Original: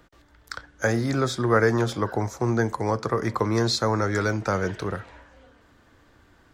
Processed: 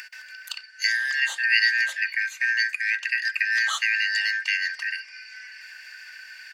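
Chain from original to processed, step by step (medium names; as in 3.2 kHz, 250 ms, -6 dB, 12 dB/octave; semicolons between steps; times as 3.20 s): four frequency bands reordered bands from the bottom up 3142; high-pass 1.4 kHz 12 dB/octave; comb 3.3 ms, depth 36%; upward compressor, threshold -29 dBFS; on a send: reverberation RT60 0.55 s, pre-delay 3 ms, DRR 21.5 dB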